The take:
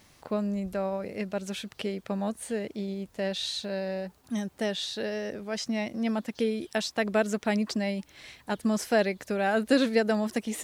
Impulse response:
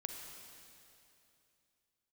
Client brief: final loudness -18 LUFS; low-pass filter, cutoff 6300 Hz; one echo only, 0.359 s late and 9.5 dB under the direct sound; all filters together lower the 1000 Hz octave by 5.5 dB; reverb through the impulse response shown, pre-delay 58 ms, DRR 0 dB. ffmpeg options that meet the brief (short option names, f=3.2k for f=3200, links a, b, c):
-filter_complex "[0:a]lowpass=6.3k,equalizer=f=1k:t=o:g=-8.5,aecho=1:1:359:0.335,asplit=2[a][b];[1:a]atrim=start_sample=2205,adelay=58[c];[b][c]afir=irnorm=-1:irlink=0,volume=1.5dB[d];[a][d]amix=inputs=2:normalize=0,volume=10dB"